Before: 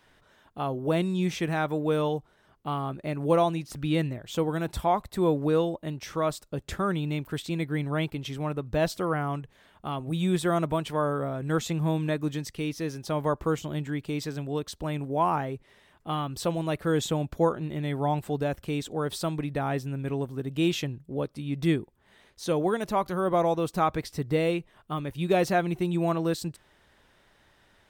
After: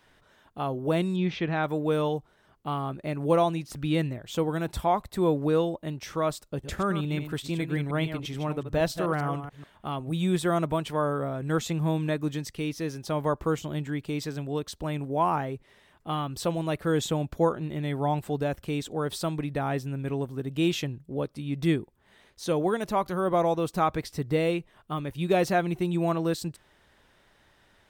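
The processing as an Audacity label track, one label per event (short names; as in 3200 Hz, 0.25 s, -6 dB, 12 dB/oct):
1.160000	1.640000	LPF 4300 Hz 24 dB/oct
6.470000	9.870000	reverse delay 0.144 s, level -9.5 dB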